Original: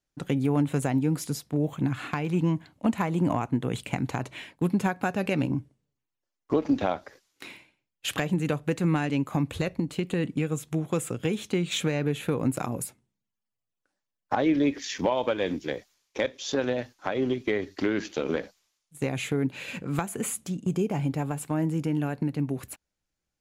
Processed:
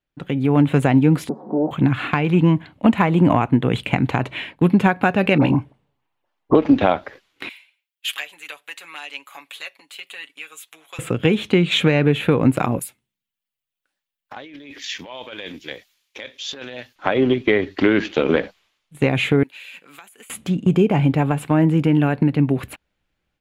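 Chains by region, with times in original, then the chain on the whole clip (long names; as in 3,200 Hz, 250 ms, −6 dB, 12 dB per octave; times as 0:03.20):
0:01.29–0:01.71: converter with a step at zero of −33.5 dBFS + elliptic band-pass filter 220–880 Hz, stop band 50 dB + comb filter 5.4 ms, depth 56%
0:05.38–0:06.55: parametric band 860 Hz +10.5 dB 1 octave + all-pass dispersion highs, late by 41 ms, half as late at 1,300 Hz
0:07.49–0:10.99: high-pass filter 590 Hz + first difference + comb filter 7.1 ms, depth 61%
0:12.79–0:16.96: compressor whose output falls as the input rises −29 dBFS + first-order pre-emphasis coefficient 0.9
0:19.43–0:20.30: high-pass filter 190 Hz + first difference + downward compressor 8 to 1, threshold −46 dBFS
whole clip: high shelf with overshoot 4,300 Hz −10.5 dB, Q 1.5; automatic gain control gain up to 9.5 dB; level +1.5 dB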